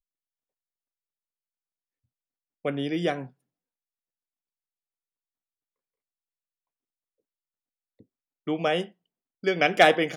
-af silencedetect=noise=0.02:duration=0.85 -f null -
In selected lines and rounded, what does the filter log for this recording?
silence_start: 0.00
silence_end: 2.65 | silence_duration: 2.65
silence_start: 3.25
silence_end: 8.47 | silence_duration: 5.22